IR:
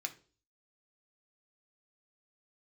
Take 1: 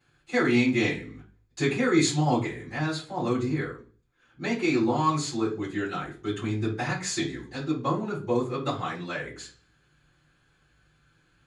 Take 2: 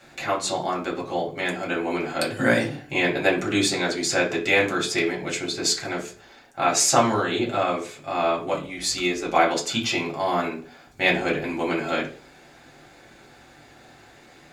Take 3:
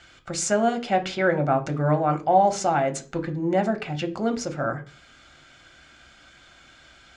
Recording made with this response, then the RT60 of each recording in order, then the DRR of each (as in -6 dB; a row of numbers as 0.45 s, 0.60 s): 3; 0.40 s, 0.40 s, 0.40 s; -13.5 dB, -4.0 dB, 5.0 dB